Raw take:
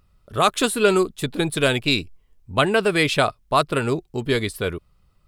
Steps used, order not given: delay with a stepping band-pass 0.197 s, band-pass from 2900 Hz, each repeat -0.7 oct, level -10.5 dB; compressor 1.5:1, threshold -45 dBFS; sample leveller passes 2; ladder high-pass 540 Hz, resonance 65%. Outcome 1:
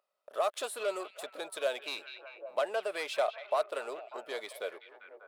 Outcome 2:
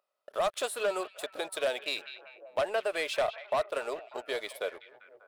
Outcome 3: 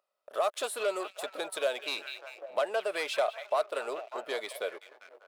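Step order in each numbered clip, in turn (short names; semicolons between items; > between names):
sample leveller > delay with a stepping band-pass > compressor > ladder high-pass; ladder high-pass > sample leveller > compressor > delay with a stepping band-pass; delay with a stepping band-pass > sample leveller > ladder high-pass > compressor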